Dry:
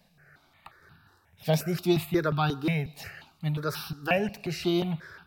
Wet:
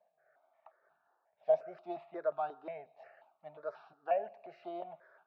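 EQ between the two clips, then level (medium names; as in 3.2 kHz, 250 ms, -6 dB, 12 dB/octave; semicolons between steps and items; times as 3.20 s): ladder band-pass 690 Hz, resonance 75%; distance through air 62 m; 0.0 dB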